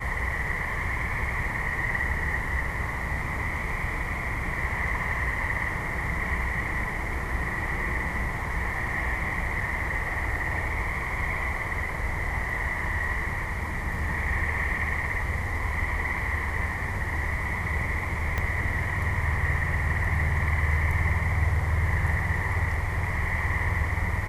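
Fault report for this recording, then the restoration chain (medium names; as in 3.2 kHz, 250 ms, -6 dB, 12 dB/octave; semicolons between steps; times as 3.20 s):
18.38 s: pop -14 dBFS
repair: de-click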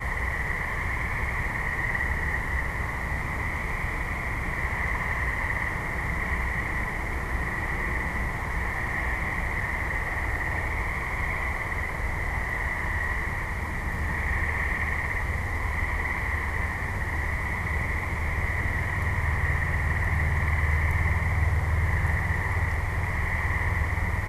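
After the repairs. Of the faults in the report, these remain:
18.38 s: pop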